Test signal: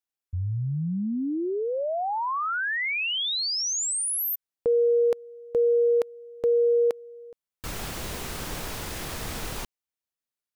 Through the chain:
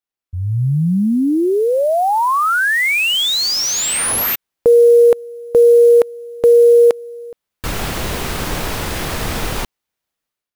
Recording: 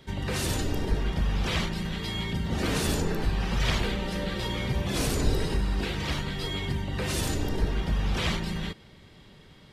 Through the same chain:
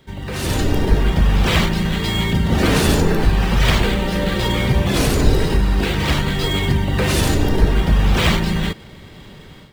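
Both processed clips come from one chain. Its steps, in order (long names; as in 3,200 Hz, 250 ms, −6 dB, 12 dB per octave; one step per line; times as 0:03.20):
automatic gain control gain up to 11.5 dB
in parallel at −6.5 dB: sample-rate reduction 11,000 Hz, jitter 20%
on the sum: level −2 dB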